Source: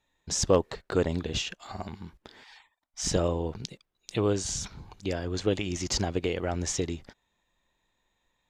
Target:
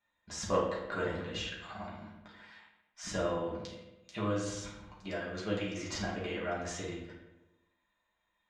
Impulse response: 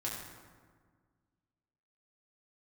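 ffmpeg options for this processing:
-filter_complex "[0:a]equalizer=frequency=1400:width=0.62:gain=12.5[link_01];[1:a]atrim=start_sample=2205,asetrate=83790,aresample=44100[link_02];[link_01][link_02]afir=irnorm=-1:irlink=0,volume=-8.5dB"

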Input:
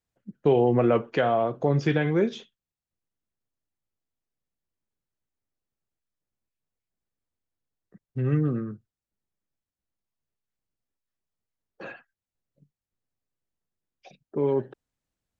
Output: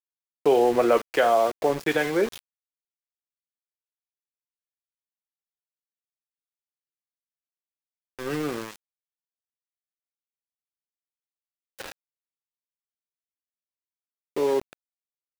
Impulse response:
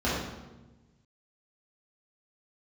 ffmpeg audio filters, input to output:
-filter_complex "[0:a]asettb=1/sr,asplit=3[link_01][link_02][link_03];[link_01]atrim=end=8.304[link_04];[link_02]atrim=start=8.3:end=11.82,asetpts=PTS-STARTPTS,afade=type=in:duration=0.004:curve=qsin,afade=type=out:start_time=3.516:duration=0.004:curve=qsin,aeval=exprs='val(0)+0.5*0.0178*sgn(val(0))':channel_layout=same[link_05];[link_03]atrim=start=11.816[link_06];[link_04][link_05]acrossfade=duration=0.004:curve1=hsin:curve2=qsin[link_07];[link_07][link_06]acrossfade=duration=0.004:curve1=qsin:curve2=hsin,highpass=420,aeval=exprs='val(0)*gte(abs(val(0)),0.0178)':channel_layout=same,volume=4.5dB"

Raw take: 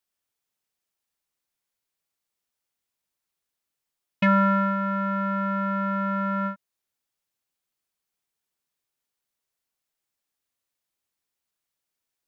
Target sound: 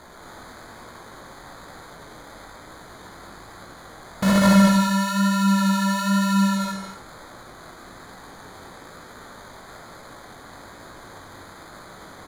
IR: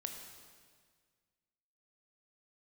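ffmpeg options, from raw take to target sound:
-filter_complex "[0:a]aeval=exprs='val(0)+0.5*0.0422*sgn(val(0))':channel_layout=same,lowpass=frequency=2000:width=0.5412,lowpass=frequency=2000:width=1.3066,aeval=exprs='(mod(4.73*val(0)+1,2)-1)/4.73':channel_layout=same,aecho=1:1:198:0.668,acrusher=samples=16:mix=1:aa=0.000001,flanger=delay=16:depth=7.7:speed=1.1[link_01];[1:a]atrim=start_sample=2205,afade=type=out:start_time=0.19:duration=0.01,atrim=end_sample=8820,asetrate=23814,aresample=44100[link_02];[link_01][link_02]afir=irnorm=-1:irlink=0,volume=2dB"

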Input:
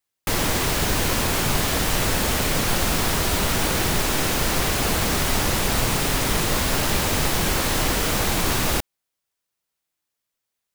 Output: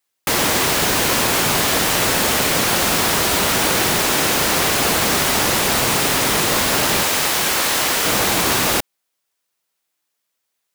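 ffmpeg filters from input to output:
ffmpeg -i in.wav -af "asetnsamples=nb_out_samples=441:pad=0,asendcmd='7.03 highpass f 740;8.05 highpass f 270',highpass=frequency=280:poles=1,volume=6.5dB" out.wav

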